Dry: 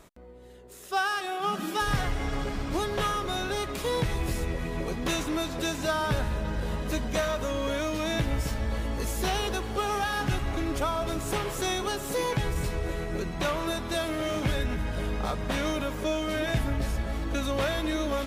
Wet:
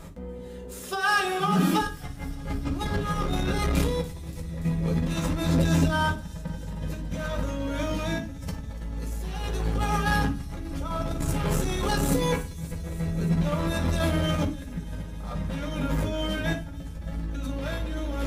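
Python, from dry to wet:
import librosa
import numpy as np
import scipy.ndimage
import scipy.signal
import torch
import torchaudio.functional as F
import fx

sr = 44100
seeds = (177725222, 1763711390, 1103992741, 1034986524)

y = fx.low_shelf(x, sr, hz=240.0, db=10.5)
y = fx.hum_notches(y, sr, base_hz=60, count=7)
y = fx.over_compress(y, sr, threshold_db=-28.0, ratio=-0.5)
y = fx.echo_wet_highpass(y, sr, ms=288, feedback_pct=77, hz=5300.0, wet_db=-15.0)
y = fx.rev_fdn(y, sr, rt60_s=0.34, lf_ratio=1.55, hf_ratio=0.85, size_ms=34.0, drr_db=0.0)
y = fx.transformer_sat(y, sr, knee_hz=190.0)
y = F.gain(torch.from_numpy(y), -1.5).numpy()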